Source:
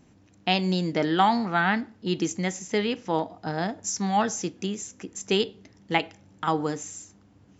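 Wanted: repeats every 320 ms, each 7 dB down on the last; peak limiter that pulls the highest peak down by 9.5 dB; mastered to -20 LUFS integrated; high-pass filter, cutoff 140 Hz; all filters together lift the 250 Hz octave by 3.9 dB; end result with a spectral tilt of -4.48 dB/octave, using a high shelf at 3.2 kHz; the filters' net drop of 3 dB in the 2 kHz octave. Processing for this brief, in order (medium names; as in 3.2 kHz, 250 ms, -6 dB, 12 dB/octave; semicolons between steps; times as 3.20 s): high-pass 140 Hz; peaking EQ 250 Hz +6.5 dB; peaking EQ 2 kHz -5.5 dB; treble shelf 3.2 kHz +4 dB; peak limiter -17 dBFS; feedback delay 320 ms, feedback 45%, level -7 dB; trim +7 dB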